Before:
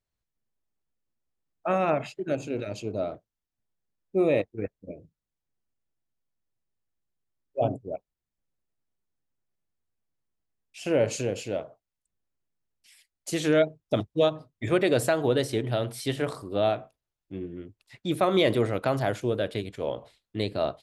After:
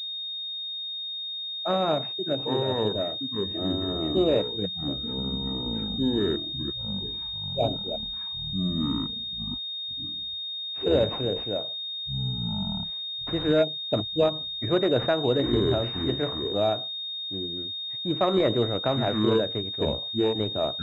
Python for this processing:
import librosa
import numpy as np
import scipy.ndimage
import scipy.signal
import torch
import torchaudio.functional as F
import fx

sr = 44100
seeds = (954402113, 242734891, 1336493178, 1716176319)

y = fx.echo_pitch(x, sr, ms=116, semitones=-6, count=3, db_per_echo=-3.0)
y = fx.pwm(y, sr, carrier_hz=3700.0)